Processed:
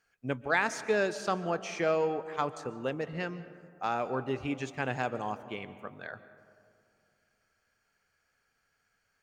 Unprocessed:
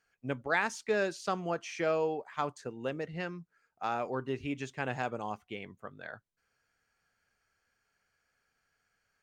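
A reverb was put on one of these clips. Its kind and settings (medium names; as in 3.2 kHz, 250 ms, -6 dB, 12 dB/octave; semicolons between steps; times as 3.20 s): algorithmic reverb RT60 2.4 s, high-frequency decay 0.3×, pre-delay 100 ms, DRR 14 dB; trim +2 dB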